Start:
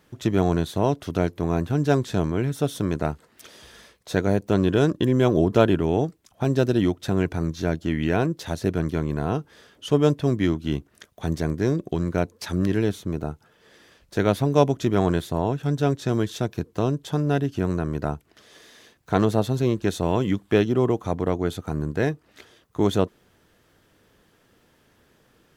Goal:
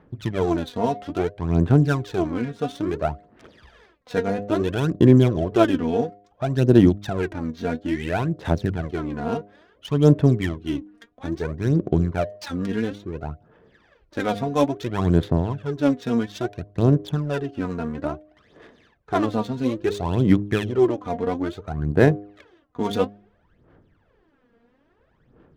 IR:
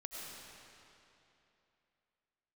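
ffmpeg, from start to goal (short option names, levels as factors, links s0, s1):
-af "aphaser=in_gain=1:out_gain=1:delay=4.3:decay=0.73:speed=0.59:type=sinusoidal,bandreject=f=102:t=h:w=4,bandreject=f=204:t=h:w=4,bandreject=f=306:t=h:w=4,bandreject=f=408:t=h:w=4,bandreject=f=510:t=h:w=4,bandreject=f=612:t=h:w=4,bandreject=f=714:t=h:w=4,adynamicsmooth=sensitivity=6:basefreq=1800,volume=0.708"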